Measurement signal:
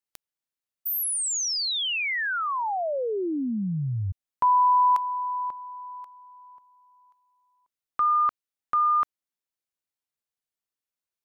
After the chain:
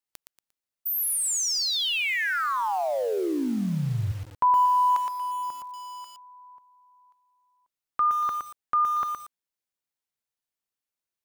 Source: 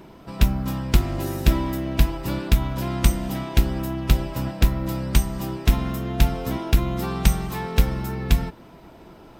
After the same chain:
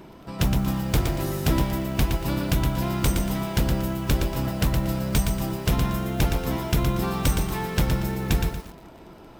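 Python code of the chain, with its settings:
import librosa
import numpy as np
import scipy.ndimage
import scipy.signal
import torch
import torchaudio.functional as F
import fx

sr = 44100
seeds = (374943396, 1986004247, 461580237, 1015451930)

y = 10.0 ** (-14.0 / 20.0) * (np.abs((x / 10.0 ** (-14.0 / 20.0) + 3.0) % 4.0 - 2.0) - 1.0)
y = fx.echo_crushed(y, sr, ms=117, feedback_pct=35, bits=7, wet_db=-5.0)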